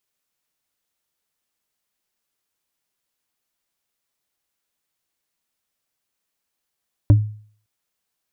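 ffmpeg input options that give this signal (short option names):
-f lavfi -i "aevalsrc='0.531*pow(10,-3*t/0.49)*sin(2*PI*106*t)+0.2*pow(10,-3*t/0.145)*sin(2*PI*292.2*t)+0.075*pow(10,-3*t/0.065)*sin(2*PI*572.8*t)+0.0282*pow(10,-3*t/0.035)*sin(2*PI*946.9*t)+0.0106*pow(10,-3*t/0.022)*sin(2*PI*1414*t)':d=0.56:s=44100"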